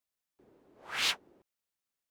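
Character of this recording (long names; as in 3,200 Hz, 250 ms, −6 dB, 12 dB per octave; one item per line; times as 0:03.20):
background noise floor −89 dBFS
spectral slope −1.0 dB per octave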